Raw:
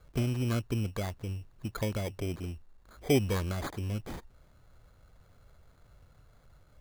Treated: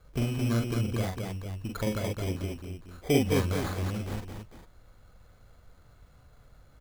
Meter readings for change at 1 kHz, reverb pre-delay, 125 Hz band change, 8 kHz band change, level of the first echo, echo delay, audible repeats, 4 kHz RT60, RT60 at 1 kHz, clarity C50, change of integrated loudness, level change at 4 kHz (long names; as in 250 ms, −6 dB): +3.0 dB, no reverb audible, +2.5 dB, +3.0 dB, −2.5 dB, 43 ms, 3, no reverb audible, no reverb audible, no reverb audible, +2.5 dB, +3.0 dB